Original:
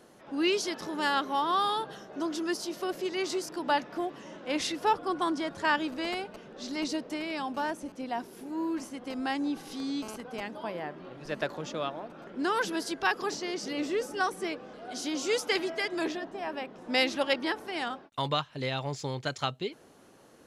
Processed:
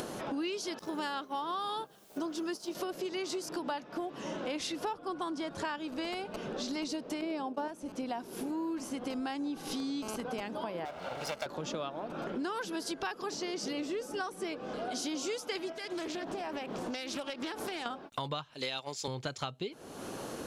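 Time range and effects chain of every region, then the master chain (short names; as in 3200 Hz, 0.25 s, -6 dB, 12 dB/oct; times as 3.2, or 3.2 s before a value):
0.79–2.75 expander -32 dBFS + requantised 12-bit, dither triangular
7.21–7.68 expander -32 dBFS + bell 420 Hz +12.5 dB 2.1 oct
10.85–11.46 minimum comb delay 1.4 ms + HPF 47 Hz + tone controls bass -13 dB, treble +2 dB
15.72–17.86 high shelf 4300 Hz +7.5 dB + compressor 4:1, threshold -43 dBFS + Doppler distortion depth 0.28 ms
18.54–19.08 gate -34 dBFS, range -9 dB + HPF 240 Hz + high shelf 2200 Hz +11.5 dB
whole clip: upward compressor, threshold -30 dBFS; bell 1900 Hz -4.5 dB 0.39 oct; compressor 6:1, threshold -36 dBFS; gain +2.5 dB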